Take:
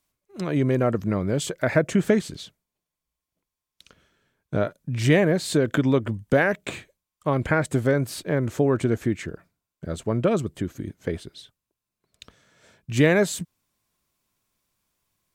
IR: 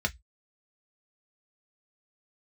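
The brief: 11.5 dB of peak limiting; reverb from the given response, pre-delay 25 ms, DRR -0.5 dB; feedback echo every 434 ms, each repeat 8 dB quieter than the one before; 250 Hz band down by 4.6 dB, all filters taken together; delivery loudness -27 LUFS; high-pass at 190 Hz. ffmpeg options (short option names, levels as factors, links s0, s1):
-filter_complex "[0:a]highpass=190,equalizer=f=250:t=o:g=-4,alimiter=limit=0.126:level=0:latency=1,aecho=1:1:434|868|1302|1736|2170:0.398|0.159|0.0637|0.0255|0.0102,asplit=2[s0][s1];[1:a]atrim=start_sample=2205,adelay=25[s2];[s1][s2]afir=irnorm=-1:irlink=0,volume=0.447[s3];[s0][s3]amix=inputs=2:normalize=0"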